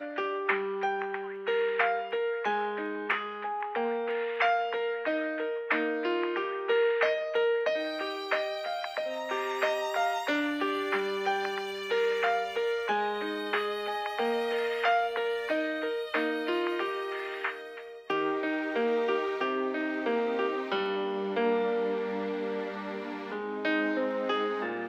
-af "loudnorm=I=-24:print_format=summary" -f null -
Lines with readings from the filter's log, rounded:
Input Integrated:    -30.3 LUFS
Input True Peak:     -12.3 dBTP
Input LRA:             2.5 LU
Input Threshold:     -40.4 LUFS